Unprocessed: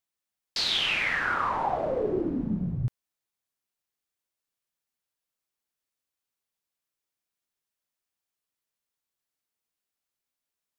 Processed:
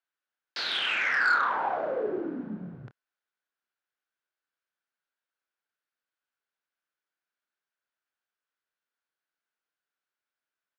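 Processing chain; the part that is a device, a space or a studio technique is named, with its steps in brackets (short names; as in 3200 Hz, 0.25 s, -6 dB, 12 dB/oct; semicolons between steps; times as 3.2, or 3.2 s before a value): intercom (BPF 300–3600 Hz; bell 1500 Hz +11.5 dB 0.37 oct; soft clip -16 dBFS, distortion -16 dB; doubler 28 ms -12 dB); gain -1.5 dB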